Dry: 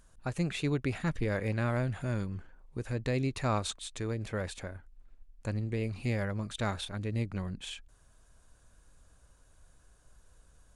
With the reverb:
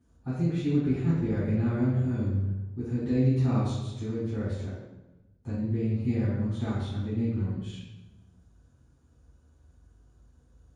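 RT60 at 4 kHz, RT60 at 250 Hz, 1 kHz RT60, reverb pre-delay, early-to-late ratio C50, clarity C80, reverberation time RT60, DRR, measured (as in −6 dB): 0.75 s, 1.3 s, 0.95 s, 3 ms, −1.0 dB, 2.0 dB, 1.1 s, −13.0 dB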